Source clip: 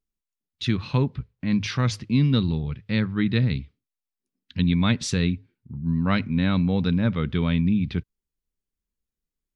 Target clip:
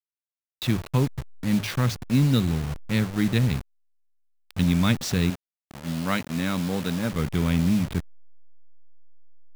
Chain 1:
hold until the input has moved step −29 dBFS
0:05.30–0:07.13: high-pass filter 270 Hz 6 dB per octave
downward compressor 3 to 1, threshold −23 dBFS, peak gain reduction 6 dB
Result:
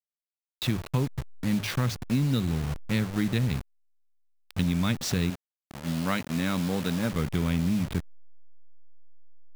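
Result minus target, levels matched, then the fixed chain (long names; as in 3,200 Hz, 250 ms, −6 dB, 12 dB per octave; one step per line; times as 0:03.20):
downward compressor: peak gain reduction +6 dB
hold until the input has moved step −29 dBFS
0:05.30–0:07.13: high-pass filter 270 Hz 6 dB per octave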